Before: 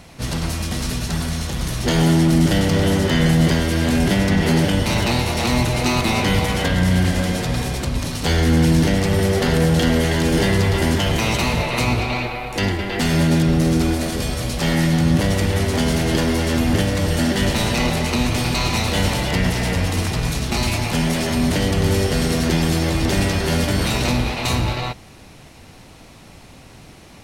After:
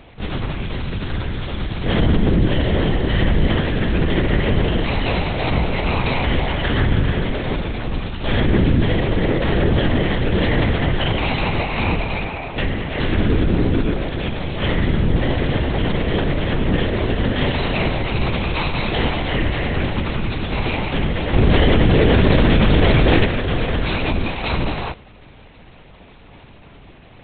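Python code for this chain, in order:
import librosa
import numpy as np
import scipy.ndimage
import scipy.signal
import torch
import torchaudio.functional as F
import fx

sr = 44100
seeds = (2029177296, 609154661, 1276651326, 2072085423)

y = fx.lpc_vocoder(x, sr, seeds[0], excitation='whisper', order=8)
y = fx.env_flatten(y, sr, amount_pct=100, at=(21.33, 23.24), fade=0.02)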